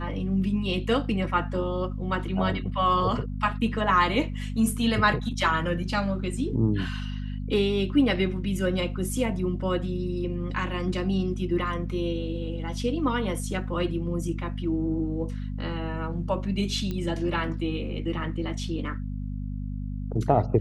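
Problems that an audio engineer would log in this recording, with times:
mains hum 50 Hz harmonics 5 −32 dBFS
0:16.91: click −19 dBFS

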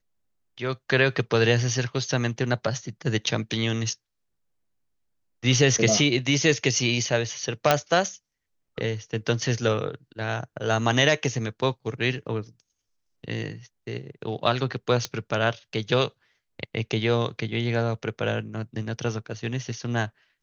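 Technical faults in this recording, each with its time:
0:07.71: click −3 dBFS
0:15.05: click −12 dBFS

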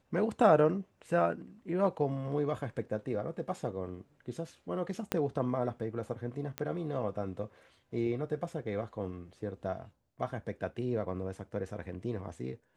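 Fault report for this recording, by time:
0:05.12: click −14 dBFS
0:06.58: click −19 dBFS

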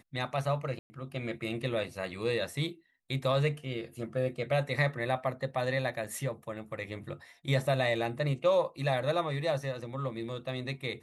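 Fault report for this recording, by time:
0:00.79–0:00.90: drop-out 110 ms
0:06.04–0:06.05: drop-out 5.3 ms

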